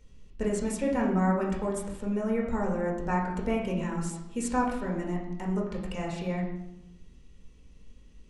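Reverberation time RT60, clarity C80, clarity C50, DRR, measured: 0.90 s, 7.5 dB, 5.0 dB, -2.5 dB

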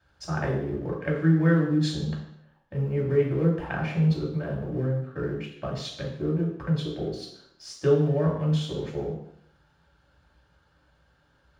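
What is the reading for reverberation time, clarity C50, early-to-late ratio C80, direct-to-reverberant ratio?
0.70 s, 5.0 dB, 8.0 dB, -2.5 dB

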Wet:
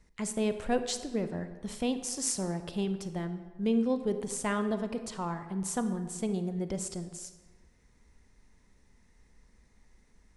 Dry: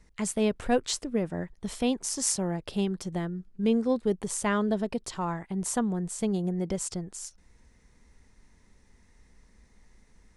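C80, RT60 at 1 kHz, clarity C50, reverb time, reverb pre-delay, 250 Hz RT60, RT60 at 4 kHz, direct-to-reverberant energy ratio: 12.0 dB, 1.4 s, 10.5 dB, 1.4 s, 31 ms, 1.5 s, 0.90 s, 9.0 dB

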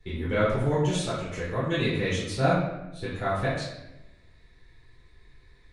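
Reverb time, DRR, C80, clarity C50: 0.95 s, -9.0 dB, 4.5 dB, 1.5 dB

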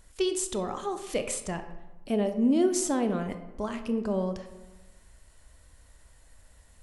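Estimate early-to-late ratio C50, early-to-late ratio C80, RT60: 10.5 dB, 12.5 dB, 1.1 s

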